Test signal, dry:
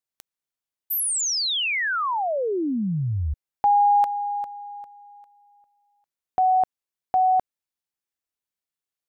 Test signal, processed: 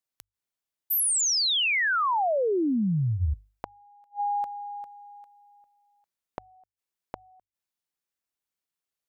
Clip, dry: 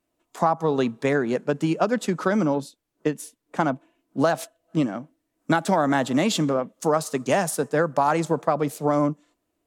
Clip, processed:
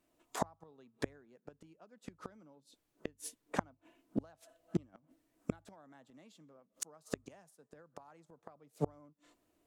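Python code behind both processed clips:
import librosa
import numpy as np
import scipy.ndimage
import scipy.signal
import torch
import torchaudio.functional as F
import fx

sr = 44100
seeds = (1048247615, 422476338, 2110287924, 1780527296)

y = fx.gate_flip(x, sr, shuts_db=-20.0, range_db=-38)
y = fx.hum_notches(y, sr, base_hz=50, count=2)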